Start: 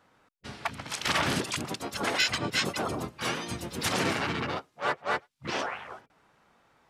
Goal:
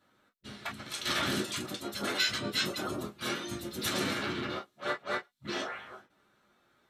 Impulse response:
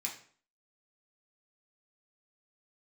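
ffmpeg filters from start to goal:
-filter_complex "[1:a]atrim=start_sample=2205,afade=t=out:st=0.14:d=0.01,atrim=end_sample=6615,asetrate=74970,aresample=44100[a];[0:a][a]afir=irnorm=-1:irlink=0,volume=1.5dB"

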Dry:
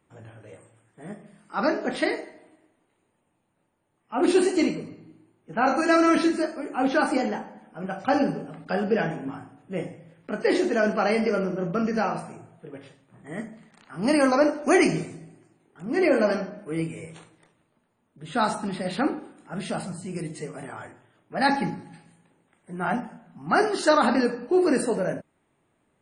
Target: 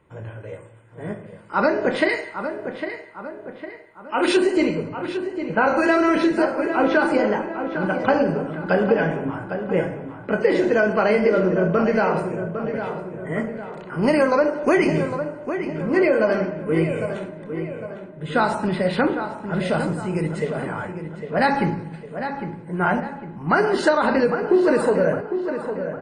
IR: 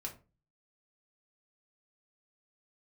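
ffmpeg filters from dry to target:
-filter_complex "[0:a]bass=f=250:g=2,treble=f=4k:g=-12,aecho=1:1:2:0.42,asettb=1/sr,asplit=3[a][b][c];[a]atrim=end=2.094[d];[b]atrim=start=2.09:end=4.37,asetpts=PTS-STARTPTS,afade=t=in:d=0.004:c=qsin,afade=t=out:st=2.276:d=0.004:c=qsin,tiltshelf=f=1.1k:g=-8[e];[c]atrim=start=4.366[f];[d][e]acrossfade=d=0.004:c1=hsin:c2=qsin[g];[g][f]acrossfade=d=0.004:c1=qsin:c2=hsin,acompressor=threshold=-23dB:ratio=6,asplit=2[h][i];[i]adelay=805,lowpass=f=2.6k:p=1,volume=-8.5dB,asplit=2[j][k];[k]adelay=805,lowpass=f=2.6k:p=1,volume=0.5,asplit=2[l][m];[m]adelay=805,lowpass=f=2.6k:p=1,volume=0.5,asplit=2[n][o];[o]adelay=805,lowpass=f=2.6k:p=1,volume=0.5,asplit=2[p][q];[q]adelay=805,lowpass=f=2.6k:p=1,volume=0.5,asplit=2[r][s];[s]adelay=805,lowpass=f=2.6k:p=1,volume=0.5[t];[j][l][n][p][r][t]amix=inputs=6:normalize=0[u];[h][u]amix=inputs=2:normalize=0,volume=8.5dB"

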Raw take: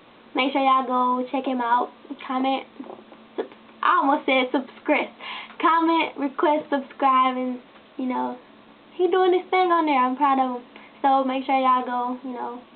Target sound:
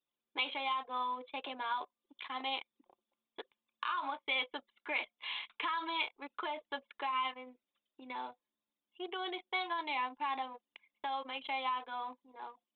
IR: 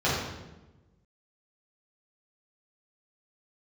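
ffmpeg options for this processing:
-af "alimiter=limit=-13dB:level=0:latency=1:release=335,aderivative,anlmdn=0.00631,volume=3.5dB"

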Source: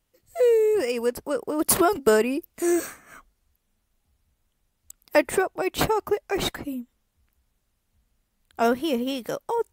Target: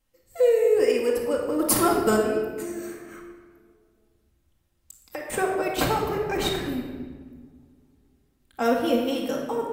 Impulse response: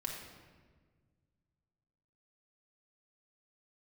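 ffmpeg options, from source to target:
-filter_complex "[0:a]asettb=1/sr,asplit=3[a][b][c];[a]atrim=end=2.164[d];[b]atrim=start=2.16:end=5.3,asetpts=PTS-STARTPTS,afade=t=in:d=0.004:c=qsin,afade=t=out:st=3.136:d=0.004:c=qsin,acompressor=threshold=-32dB:ratio=12[e];[c]atrim=start=5.296[f];[d][e]acrossfade=d=0.004:c1=hsin:c2=qsin[g];[g][f]acrossfade=d=0.004:c1=qsin:c2=hsin[h];[1:a]atrim=start_sample=2205,asetrate=43218,aresample=44100[i];[h][i]afir=irnorm=-1:irlink=0"

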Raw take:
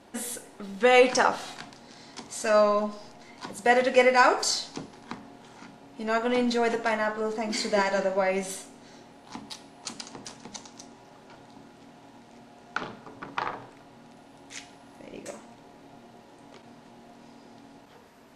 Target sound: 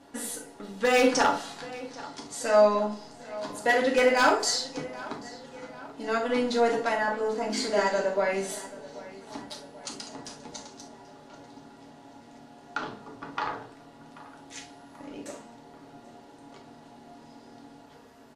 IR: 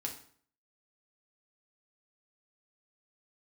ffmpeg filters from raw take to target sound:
-filter_complex "[0:a]equalizer=f=2.3k:t=o:w=0.22:g=-5,aeval=exprs='0.251*(abs(mod(val(0)/0.251+3,4)-2)-1)':c=same,asplit=2[a][b];[b]adelay=785,lowpass=f=4.5k:p=1,volume=-18dB,asplit=2[c][d];[d]adelay=785,lowpass=f=4.5k:p=1,volume=0.54,asplit=2[e][f];[f]adelay=785,lowpass=f=4.5k:p=1,volume=0.54,asplit=2[g][h];[h]adelay=785,lowpass=f=4.5k:p=1,volume=0.54,asplit=2[i][j];[j]adelay=785,lowpass=f=4.5k:p=1,volume=0.54[k];[a][c][e][g][i][k]amix=inputs=6:normalize=0[l];[1:a]atrim=start_sample=2205,atrim=end_sample=3528[m];[l][m]afir=irnorm=-1:irlink=0"

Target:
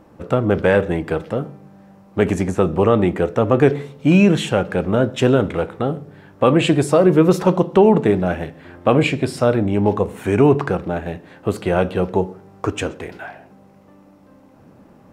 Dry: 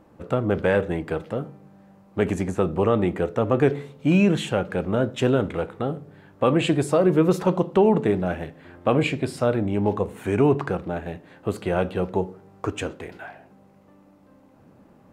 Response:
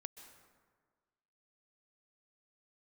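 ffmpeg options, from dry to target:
-filter_complex "[0:a]asplit=2[a][b];[b]equalizer=f=5.5k:t=o:w=0.23:g=10[c];[1:a]atrim=start_sample=2205,atrim=end_sample=6174[d];[c][d]afir=irnorm=-1:irlink=0,volume=-4dB[e];[a][e]amix=inputs=2:normalize=0,volume=3dB"

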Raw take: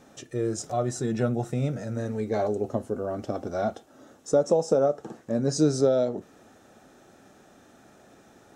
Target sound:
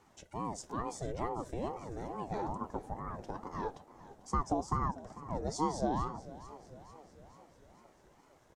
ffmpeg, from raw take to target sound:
-filter_complex "[0:a]asplit=7[a][b][c][d][e][f][g];[b]adelay=445,afreqshift=-50,volume=-16.5dB[h];[c]adelay=890,afreqshift=-100,volume=-20.9dB[i];[d]adelay=1335,afreqshift=-150,volume=-25.4dB[j];[e]adelay=1780,afreqshift=-200,volume=-29.8dB[k];[f]adelay=2225,afreqshift=-250,volume=-34.2dB[l];[g]adelay=2670,afreqshift=-300,volume=-38.7dB[m];[a][h][i][j][k][l][m]amix=inputs=7:normalize=0,aeval=exprs='val(0)*sin(2*PI*420*n/s+420*0.55/2.3*sin(2*PI*2.3*n/s))':c=same,volume=-8dB"

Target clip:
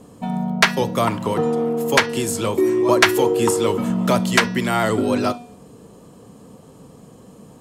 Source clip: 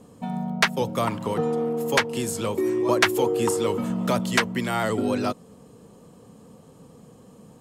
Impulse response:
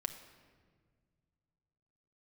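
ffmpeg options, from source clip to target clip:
-filter_complex "[0:a]bandreject=f=241:t=h:w=4,bandreject=f=482:t=h:w=4,bandreject=f=723:t=h:w=4,bandreject=f=964:t=h:w=4,bandreject=f=1.205k:t=h:w=4,bandreject=f=1.446k:t=h:w=4,bandreject=f=1.687k:t=h:w=4,bandreject=f=1.928k:t=h:w=4,bandreject=f=2.169k:t=h:w=4,bandreject=f=2.41k:t=h:w=4,bandreject=f=2.651k:t=h:w=4,bandreject=f=2.892k:t=h:w=4,bandreject=f=3.133k:t=h:w=4,bandreject=f=3.374k:t=h:w=4,bandreject=f=3.615k:t=h:w=4,bandreject=f=3.856k:t=h:w=4,bandreject=f=4.097k:t=h:w=4,bandreject=f=4.338k:t=h:w=4,bandreject=f=4.579k:t=h:w=4,bandreject=f=4.82k:t=h:w=4,bandreject=f=5.061k:t=h:w=4,bandreject=f=5.302k:t=h:w=4,bandreject=f=5.543k:t=h:w=4,bandreject=f=5.784k:t=h:w=4,bandreject=f=6.025k:t=h:w=4,bandreject=f=6.266k:t=h:w=4,asplit=2[a][b];[1:a]atrim=start_sample=2205,atrim=end_sample=6174,asetrate=83790,aresample=44100[c];[b][c]afir=irnorm=-1:irlink=0,volume=5.5dB[d];[a][d]amix=inputs=2:normalize=0"

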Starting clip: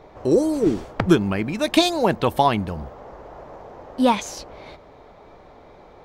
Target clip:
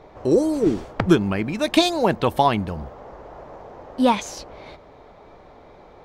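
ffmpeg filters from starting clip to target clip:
-af "highshelf=f=10k:g=-4"

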